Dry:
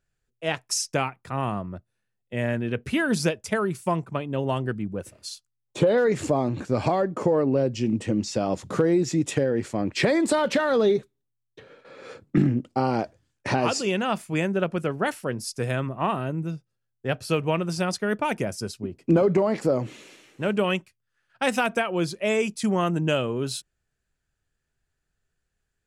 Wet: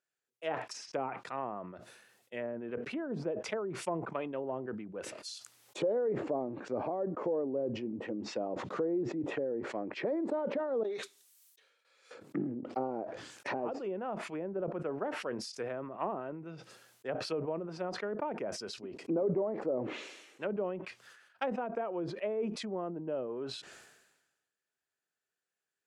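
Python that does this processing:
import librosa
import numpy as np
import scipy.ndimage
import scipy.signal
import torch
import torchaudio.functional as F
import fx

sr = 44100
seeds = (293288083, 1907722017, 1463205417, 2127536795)

y = fx.pre_emphasis(x, sr, coefficient=0.97, at=(10.83, 12.11))
y = fx.env_lowpass_down(y, sr, base_hz=570.0, full_db=-20.5)
y = scipy.signal.sosfilt(scipy.signal.butter(2, 380.0, 'highpass', fs=sr, output='sos'), y)
y = fx.sustainer(y, sr, db_per_s=50.0)
y = y * librosa.db_to_amplitude(-7.0)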